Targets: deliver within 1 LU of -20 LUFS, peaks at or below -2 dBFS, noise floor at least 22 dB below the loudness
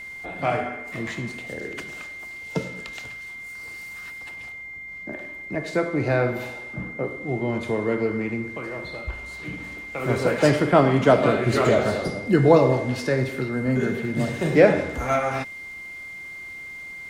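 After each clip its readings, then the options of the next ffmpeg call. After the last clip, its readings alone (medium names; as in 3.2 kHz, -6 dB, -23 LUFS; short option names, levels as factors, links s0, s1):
steady tone 2.1 kHz; tone level -35 dBFS; loudness -23.5 LUFS; peak level -2.5 dBFS; loudness target -20.0 LUFS
-> -af "bandreject=f=2100:w=30"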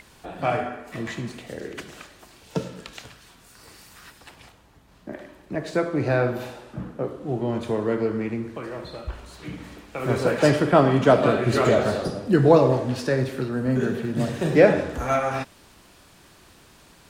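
steady tone not found; loudness -22.5 LUFS; peak level -2.5 dBFS; loudness target -20.0 LUFS
-> -af "volume=1.33,alimiter=limit=0.794:level=0:latency=1"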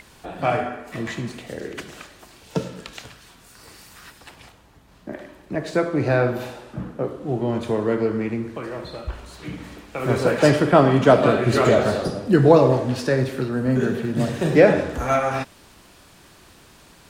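loudness -20.5 LUFS; peak level -2.0 dBFS; noise floor -51 dBFS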